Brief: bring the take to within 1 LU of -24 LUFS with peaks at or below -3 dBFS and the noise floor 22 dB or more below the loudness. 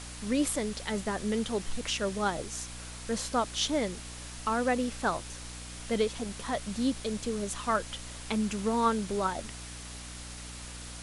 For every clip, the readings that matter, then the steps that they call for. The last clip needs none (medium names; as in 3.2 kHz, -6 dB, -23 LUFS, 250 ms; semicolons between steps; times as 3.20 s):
hum 60 Hz; highest harmonic 300 Hz; hum level -43 dBFS; noise floor -43 dBFS; noise floor target -55 dBFS; loudness -32.5 LUFS; peak level -15.0 dBFS; loudness target -24.0 LUFS
-> hum notches 60/120/180/240/300 Hz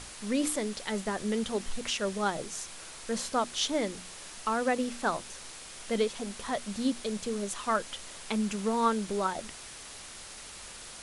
hum not found; noise floor -46 dBFS; noise floor target -54 dBFS
-> noise reduction 8 dB, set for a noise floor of -46 dBFS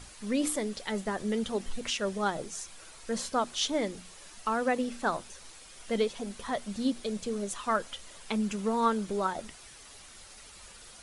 noise floor -51 dBFS; noise floor target -54 dBFS
-> noise reduction 6 dB, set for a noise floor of -51 dBFS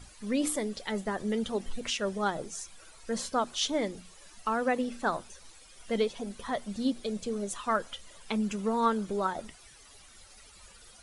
noise floor -55 dBFS; loudness -32.0 LUFS; peak level -15.5 dBFS; loudness target -24.0 LUFS
-> trim +8 dB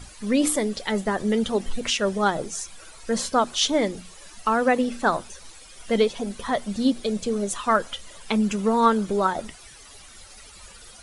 loudness -24.0 LUFS; peak level -7.5 dBFS; noise floor -47 dBFS